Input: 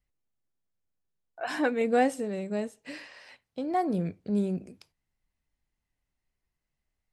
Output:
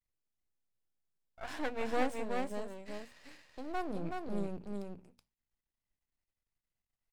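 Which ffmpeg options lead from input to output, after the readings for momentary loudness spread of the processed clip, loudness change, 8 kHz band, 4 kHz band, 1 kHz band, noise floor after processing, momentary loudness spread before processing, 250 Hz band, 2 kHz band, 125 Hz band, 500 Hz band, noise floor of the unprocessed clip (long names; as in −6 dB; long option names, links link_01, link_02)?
15 LU, −10.0 dB, −7.5 dB, −5.0 dB, −8.0 dB, below −85 dBFS, 18 LU, −10.5 dB, −7.5 dB, −10.5 dB, −9.0 dB, −85 dBFS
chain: -af "aeval=exprs='max(val(0),0)':channel_layout=same,bandreject=frequency=60:width_type=h:width=6,bandreject=frequency=120:width_type=h:width=6,bandreject=frequency=180:width_type=h:width=6,bandreject=frequency=240:width_type=h:width=6,aecho=1:1:375:0.631,volume=-6dB"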